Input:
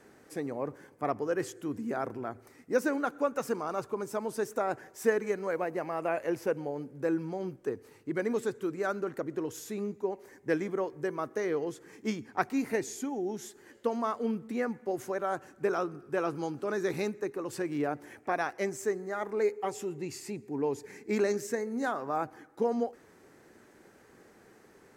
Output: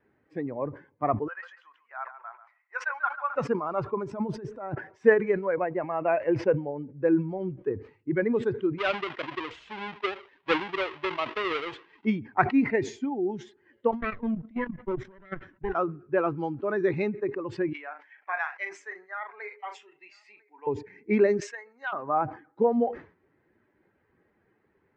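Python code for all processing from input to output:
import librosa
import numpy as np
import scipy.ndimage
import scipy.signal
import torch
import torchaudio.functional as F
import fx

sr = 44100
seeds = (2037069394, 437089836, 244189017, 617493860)

y = fx.chain(x, sr, fx.highpass(hz=890.0, slope=24),
    fx.high_shelf(hz=4400.0, db=-10.0),
    fx.echo_feedback(ms=140, feedback_pct=17, wet_db=-8.5), at=(1.28, 3.36))
y = fx.chain(y, sr, fx.low_shelf(hz=200.0, db=9.0),
    fx.over_compress(threshold_db=-36.0, ratio=-1.0), at=(4.11, 4.75))
y = fx.chain(y, sr, fx.halfwave_hold(),
    fx.highpass(hz=850.0, slope=6),
    fx.resample_bad(factor=3, down='none', up='hold'), at=(8.78, 12.05))
y = fx.chain(y, sr, fx.lower_of_two(delay_ms=0.55),
    fx.level_steps(step_db=16), at=(13.91, 15.75))
y = fx.chain(y, sr, fx.highpass(hz=1100.0, slope=12),
    fx.doubler(ms=38.0, db=-9.0),
    fx.echo_single(ms=999, db=-21.5), at=(17.73, 20.67))
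y = fx.chain(y, sr, fx.highpass(hz=1000.0, slope=12),
    fx.notch(hz=2000.0, q=16.0),
    fx.transformer_sat(knee_hz=1600.0), at=(21.4, 21.93))
y = fx.bin_expand(y, sr, power=1.5)
y = scipy.signal.sosfilt(scipy.signal.butter(4, 3000.0, 'lowpass', fs=sr, output='sos'), y)
y = fx.sustainer(y, sr, db_per_s=150.0)
y = y * librosa.db_to_amplitude(8.5)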